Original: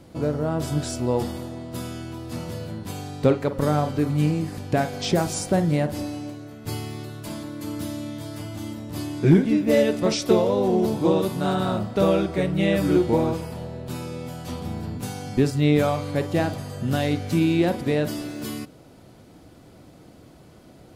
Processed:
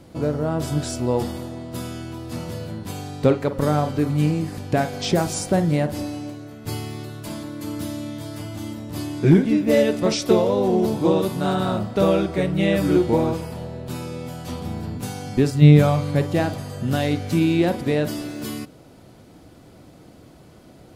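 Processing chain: 15.61–16.33 s: peaking EQ 150 Hz +11.5 dB -> +5.5 dB; trim +1.5 dB

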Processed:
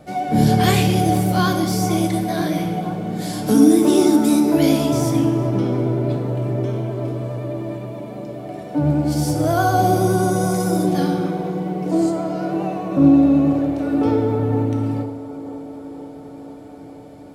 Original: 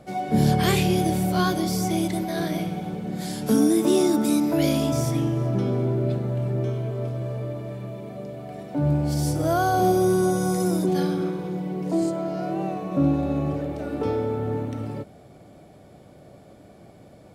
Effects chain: vibrato 9.6 Hz 36 cents; feedback echo behind a band-pass 480 ms, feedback 73%, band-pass 600 Hz, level -11.5 dB; FDN reverb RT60 0.93 s, low-frequency decay 1×, high-frequency decay 0.95×, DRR 5.5 dB; trim +3 dB

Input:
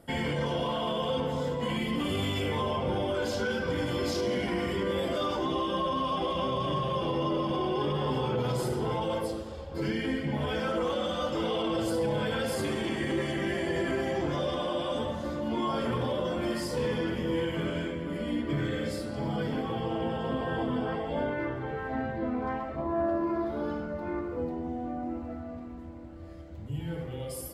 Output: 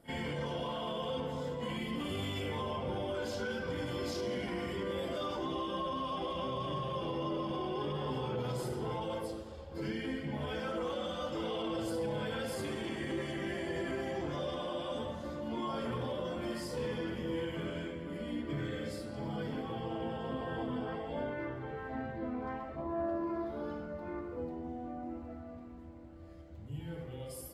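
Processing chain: reverse echo 39 ms -19 dB; trim -7 dB

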